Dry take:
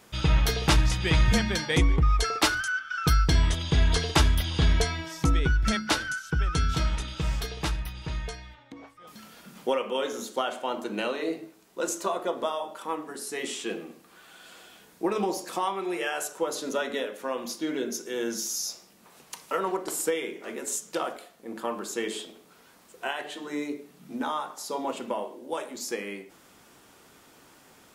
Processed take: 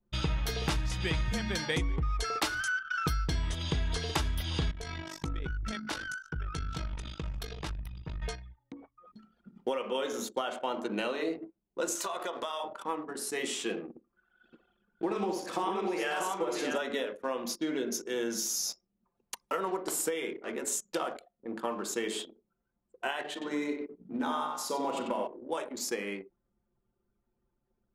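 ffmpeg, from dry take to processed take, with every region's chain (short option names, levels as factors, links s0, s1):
-filter_complex "[0:a]asettb=1/sr,asplit=3[s0][s1][s2];[s0]atrim=end=4.714[s3];[s1]atrim=start=4.71:end=8.22,asetpts=PTS-STARTPTS,afade=t=in:d=0.004:c=qsin,afade=t=out:st=3.506:d=0.004:c=qsin,acompressor=threshold=0.0224:ratio=2.5:attack=3.2:release=140:knee=1:detection=peak,tremolo=f=49:d=0.519[s4];[s2]atrim=start=8.216[s5];[s3][s4]acrossfade=d=0.004:c1=hsin:c2=qsin[s6];[s6][s5]acrossfade=d=0.004:c1=qsin:c2=hsin,asettb=1/sr,asplit=3[s7][s8][s9];[s7]atrim=end=11.954[s10];[s8]atrim=start=11.95:end=12.64,asetpts=PTS-STARTPTS,afade=t=in:d=0.004:c=qsin,afade=t=out:st=0.686:d=0.004:c=qsin,tiltshelf=f=680:g=-8,acompressor=threshold=0.0282:ratio=5:attack=3.2:release=140:knee=1:detection=peak[s11];[s9]atrim=start=12.636[s12];[s10][s11]acrossfade=d=0.004:c1=hsin:c2=qsin[s13];[s13][s12]acrossfade=d=0.004:c1=qsin:c2=hsin,asettb=1/sr,asplit=3[s14][s15][s16];[s14]atrim=end=13.894[s17];[s15]atrim=start=13.89:end=16.78,asetpts=PTS-STARTPTS,afade=t=in:d=0.004:c=qsin,afade=t=out:st=2.886:d=0.004:c=qsin,highshelf=f=7000:g=-9,aecho=1:1:64|543|637:0.531|0.266|0.596,atrim=end_sample=127449[s18];[s16]atrim=start=16.776[s19];[s17][s18]acrossfade=d=0.004:c1=hsin:c2=qsin[s20];[s20][s19]acrossfade=d=0.004:c1=qsin:c2=hsin,asettb=1/sr,asplit=3[s21][s22][s23];[s21]atrim=end=23.324[s24];[s22]atrim=start=23.32:end=25.27,asetpts=PTS-STARTPTS,afade=t=in:d=0.004:c=qsin,afade=t=out:st=1.946:d=0.004:c=qsin,asplit=2[s25][s26];[s26]adelay=44,volume=0.251[s27];[s25][s27]amix=inputs=2:normalize=0,atrim=end_sample=85995,asplit=2[s28][s29];[s29]adelay=93,lowpass=f=5000:p=1,volume=0.562,asplit=2[s30][s31];[s31]adelay=93,lowpass=f=5000:p=1,volume=0.36,asplit=2[s32][s33];[s33]adelay=93,lowpass=f=5000:p=1,volume=0.36,asplit=2[s34][s35];[s35]adelay=93,lowpass=f=5000:p=1,volume=0.36[s36];[s28][s30][s32][s34][s36]amix=inputs=5:normalize=0,atrim=end_sample=85995[s37];[s23]atrim=start=25.266[s38];[s24][s37]acrossfade=d=0.004:c1=hsin:c2=qsin[s39];[s39][s38]acrossfade=d=0.004:c1=qsin:c2=hsin,anlmdn=0.251,acompressor=threshold=0.0398:ratio=6"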